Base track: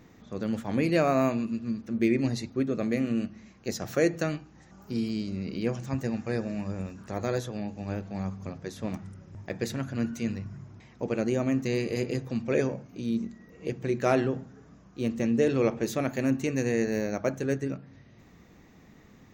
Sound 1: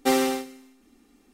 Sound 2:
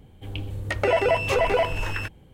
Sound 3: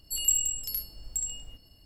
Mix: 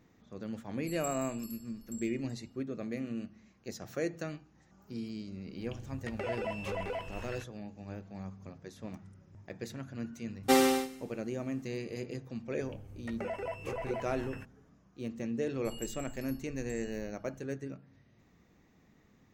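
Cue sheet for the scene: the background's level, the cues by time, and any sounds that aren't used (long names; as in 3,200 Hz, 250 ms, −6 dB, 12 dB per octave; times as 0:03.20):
base track −10 dB
0:00.76: mix in 3 −18 dB + single-tap delay 379 ms −16 dB
0:05.36: mix in 2 −16 dB
0:10.43: mix in 1 −2.5 dB
0:12.37: mix in 2 −17 dB + parametric band 3,700 Hz −10 dB
0:15.54: mix in 3 −12.5 dB + bass and treble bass +8 dB, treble −10 dB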